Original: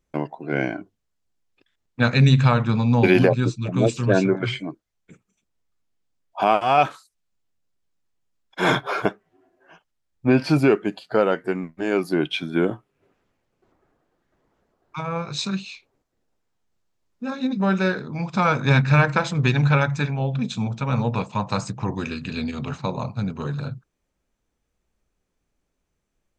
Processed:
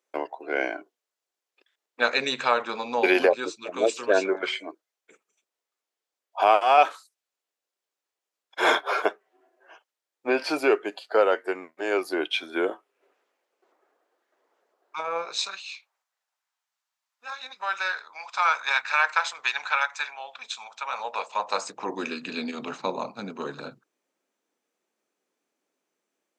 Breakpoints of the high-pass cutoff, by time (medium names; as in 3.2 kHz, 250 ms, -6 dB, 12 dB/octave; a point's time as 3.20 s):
high-pass 24 dB/octave
15.25 s 400 Hz
15.67 s 860 Hz
20.73 s 860 Hz
22.06 s 270 Hz